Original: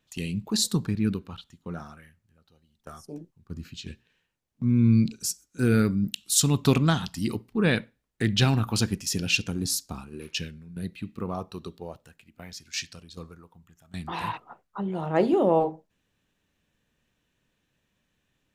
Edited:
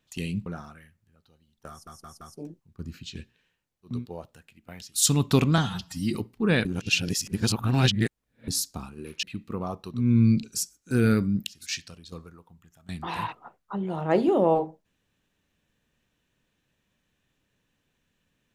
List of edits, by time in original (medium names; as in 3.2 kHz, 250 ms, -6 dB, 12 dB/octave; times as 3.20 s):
0.46–1.68 s: delete
2.92 s: stutter 0.17 s, 4 plays
4.65–6.23 s: swap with 11.65–12.60 s, crossfade 0.24 s
6.92–7.30 s: stretch 1.5×
7.80–9.63 s: reverse
10.38–10.91 s: delete